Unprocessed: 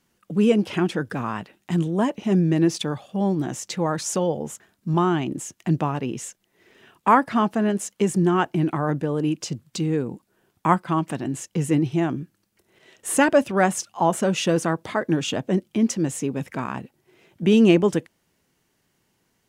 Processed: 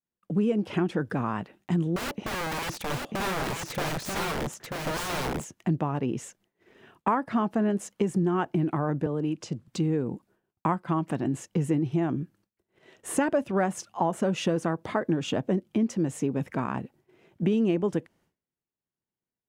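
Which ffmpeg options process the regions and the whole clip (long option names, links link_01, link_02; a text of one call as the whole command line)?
ffmpeg -i in.wav -filter_complex "[0:a]asettb=1/sr,asplit=3[link_01][link_02][link_03];[link_01]atrim=end=1.964[link_04];[link_02]atrim=start=1.96:end=5.45,asetpts=PTS-STARTPTS,afade=type=in:duration=0.004:curve=qsin,afade=type=out:start_time=3.486:duration=0.004:curve=qsin,aeval=exprs='(mod(15.8*val(0)+1,2)-1)/15.8':channel_layout=same,aecho=1:1:939:0.668,atrim=end_sample=153909[link_05];[link_03]atrim=start=5.446[link_06];[link_04][link_05]acrossfade=duration=0.004:curve1=hsin:curve2=qsin[link_07];[link_07][link_06]acrossfade=duration=0.004:curve1=qsin:curve2=hsin,asettb=1/sr,asplit=3[link_08][link_09][link_10];[link_08]atrim=end=9.064[link_11];[link_09]atrim=start=9.06:end=9.68,asetpts=PTS-STARTPTS,afade=type=in:duration=0.004:curve=qsin,afade=type=out:start_time=0.616:duration=0.004:curve=qsin,lowpass=10000,acrossover=split=180|370[link_12][link_13][link_14];[link_12]acompressor=threshold=-36dB:ratio=4[link_15];[link_13]acompressor=threshold=-34dB:ratio=4[link_16];[link_14]acompressor=threshold=-32dB:ratio=4[link_17];[link_15][link_16][link_17]amix=inputs=3:normalize=0[link_18];[link_10]atrim=start=9.676[link_19];[link_11][link_18]acrossfade=duration=0.004:curve1=hsin:curve2=qsin[link_20];[link_20][link_19]acrossfade=duration=0.004:curve1=qsin:curve2=hsin,agate=range=-33dB:threshold=-53dB:ratio=3:detection=peak,highshelf=frequency=2200:gain=-10,acompressor=threshold=-23dB:ratio=5,volume=1dB" out.wav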